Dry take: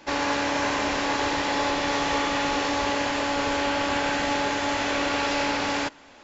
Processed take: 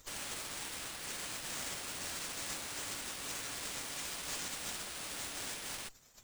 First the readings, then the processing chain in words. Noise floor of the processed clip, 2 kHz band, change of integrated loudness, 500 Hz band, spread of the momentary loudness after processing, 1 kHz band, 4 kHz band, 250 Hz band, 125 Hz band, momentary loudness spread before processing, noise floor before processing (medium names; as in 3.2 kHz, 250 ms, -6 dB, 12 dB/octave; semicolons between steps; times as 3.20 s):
-60 dBFS, -18.0 dB, -14.5 dB, -24.0 dB, 2 LU, -23.5 dB, -12.5 dB, -25.0 dB, -16.0 dB, 1 LU, -50 dBFS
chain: overdrive pedal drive 31 dB, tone 4.2 kHz, clips at -12.5 dBFS; spectral gate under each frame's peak -30 dB weak; sliding maximum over 3 samples